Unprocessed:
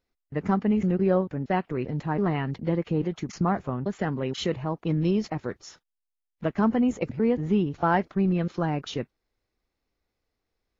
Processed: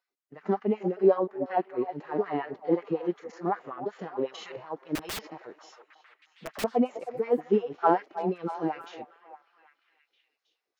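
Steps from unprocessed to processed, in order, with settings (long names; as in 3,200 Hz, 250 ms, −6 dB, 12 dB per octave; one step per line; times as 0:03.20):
dynamic equaliser 750 Hz, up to +3 dB, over −36 dBFS, Q 2.2
harmonic and percussive parts rebalanced percussive −18 dB
auto-filter high-pass sine 5.4 Hz 310–1,600 Hz
0:04.95–0:06.64: wrap-around overflow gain 29.5 dB
on a send: echo through a band-pass that steps 317 ms, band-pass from 620 Hz, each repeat 0.7 octaves, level −9.5 dB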